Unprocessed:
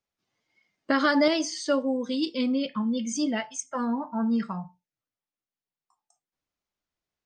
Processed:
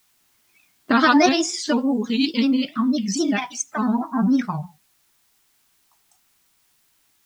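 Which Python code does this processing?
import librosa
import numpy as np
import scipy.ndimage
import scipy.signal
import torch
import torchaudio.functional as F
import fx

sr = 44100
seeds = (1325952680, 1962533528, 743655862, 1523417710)

y = fx.granulator(x, sr, seeds[0], grain_ms=100.0, per_s=20.0, spray_ms=18.0, spread_st=3)
y = fx.quant_dither(y, sr, seeds[1], bits=12, dither='triangular')
y = fx.peak_eq(y, sr, hz=520.0, db=-11.5, octaves=0.38)
y = F.gain(torch.from_numpy(y), 8.5).numpy()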